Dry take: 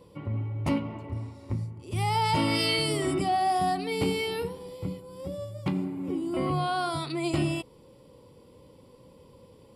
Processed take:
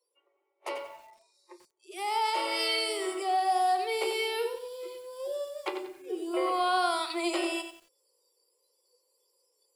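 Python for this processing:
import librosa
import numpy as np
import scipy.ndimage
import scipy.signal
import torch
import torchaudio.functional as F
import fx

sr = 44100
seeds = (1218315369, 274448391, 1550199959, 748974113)

y = scipy.signal.sosfilt(scipy.signal.butter(16, 350.0, 'highpass', fs=sr, output='sos'), x)
y = fx.noise_reduce_blind(y, sr, reduce_db=26)
y = fx.rider(y, sr, range_db=4, speed_s=2.0)
y = fx.echo_crushed(y, sr, ms=91, feedback_pct=35, bits=9, wet_db=-8.5)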